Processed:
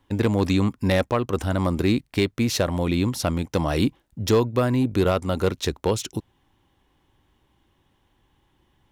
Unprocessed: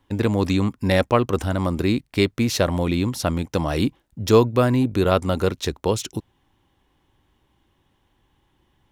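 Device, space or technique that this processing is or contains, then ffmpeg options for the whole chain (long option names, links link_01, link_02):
limiter into clipper: -af "alimiter=limit=-8.5dB:level=0:latency=1:release=426,asoftclip=type=hard:threshold=-11.5dB"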